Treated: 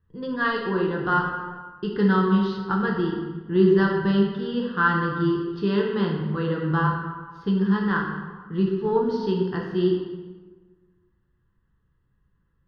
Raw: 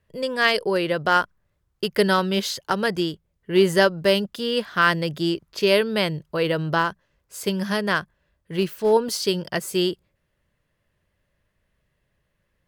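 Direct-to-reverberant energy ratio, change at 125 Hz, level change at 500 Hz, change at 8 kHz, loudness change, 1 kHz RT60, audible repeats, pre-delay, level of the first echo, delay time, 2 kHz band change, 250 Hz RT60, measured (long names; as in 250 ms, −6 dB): −2.0 dB, +4.5 dB, −3.0 dB, below −30 dB, −1.5 dB, 1.4 s, no echo audible, 6 ms, no echo audible, no echo audible, −3.5 dB, 1.5 s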